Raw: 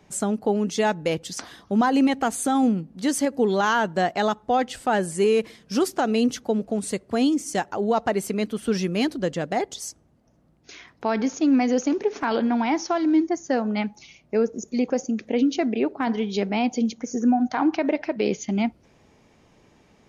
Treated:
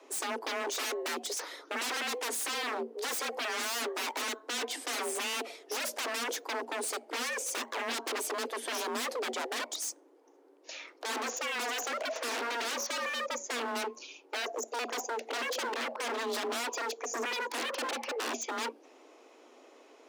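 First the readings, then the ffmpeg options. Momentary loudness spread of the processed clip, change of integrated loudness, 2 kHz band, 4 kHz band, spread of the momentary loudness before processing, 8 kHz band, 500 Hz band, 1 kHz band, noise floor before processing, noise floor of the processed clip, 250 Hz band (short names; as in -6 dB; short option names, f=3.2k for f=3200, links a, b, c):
4 LU, -10.5 dB, -3.0 dB, 0.0 dB, 6 LU, -1.5 dB, -12.5 dB, -9.5 dB, -59 dBFS, -59 dBFS, -23.5 dB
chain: -af "aeval=exprs='0.0335*(abs(mod(val(0)/0.0335+3,4)-2)-1)':c=same,afreqshift=230"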